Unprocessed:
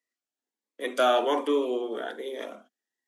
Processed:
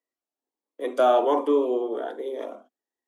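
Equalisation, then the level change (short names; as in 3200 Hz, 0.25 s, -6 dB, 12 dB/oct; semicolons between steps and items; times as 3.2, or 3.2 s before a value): band shelf 540 Hz +11 dB 2.5 oct; -7.0 dB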